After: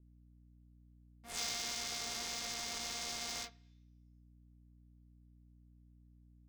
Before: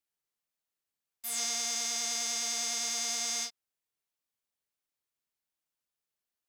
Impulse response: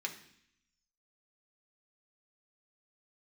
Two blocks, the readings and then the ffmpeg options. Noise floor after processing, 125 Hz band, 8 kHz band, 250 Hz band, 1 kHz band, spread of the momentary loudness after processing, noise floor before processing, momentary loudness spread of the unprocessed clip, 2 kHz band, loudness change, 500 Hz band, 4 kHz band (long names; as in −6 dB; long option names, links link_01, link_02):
−63 dBFS, can't be measured, −11.0 dB, −2.5 dB, −3.5 dB, 7 LU, below −85 dBFS, 5 LU, −4.0 dB, −8.0 dB, −3.0 dB, −6.0 dB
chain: -filter_complex "[0:a]adynamicsmooth=sensitivity=8:basefreq=870,volume=26dB,asoftclip=hard,volume=-26dB,asplit=2[link_01][link_02];[1:a]atrim=start_sample=2205,lowpass=4900[link_03];[link_02][link_03]afir=irnorm=-1:irlink=0,volume=-12dB[link_04];[link_01][link_04]amix=inputs=2:normalize=0,aeval=exprs='val(0)+0.000891*(sin(2*PI*60*n/s)+sin(2*PI*2*60*n/s)/2+sin(2*PI*3*60*n/s)/3+sin(2*PI*4*60*n/s)/4+sin(2*PI*5*60*n/s)/5)':channel_layout=same,adynamicequalizer=threshold=0.00178:dfrequency=1600:dqfactor=0.7:tfrequency=1600:tqfactor=0.7:attack=5:release=100:ratio=0.375:range=2:mode=cutabove:tftype=highshelf"